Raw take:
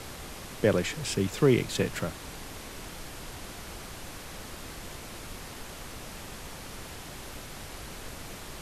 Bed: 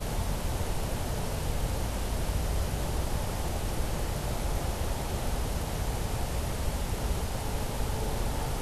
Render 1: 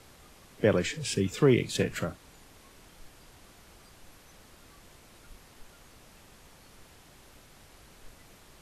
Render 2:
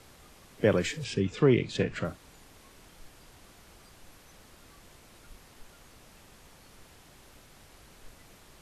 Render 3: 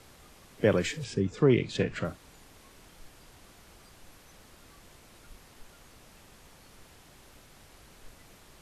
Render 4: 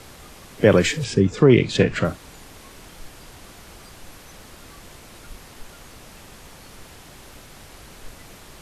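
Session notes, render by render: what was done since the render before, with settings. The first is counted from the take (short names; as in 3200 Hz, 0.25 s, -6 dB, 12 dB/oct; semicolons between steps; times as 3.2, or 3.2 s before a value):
noise print and reduce 13 dB
1.04–2.05 air absorption 110 m
1.05–1.5 bell 2800 Hz -10.5 dB 1 oct
gain +11 dB; limiter -3 dBFS, peak gain reduction 3 dB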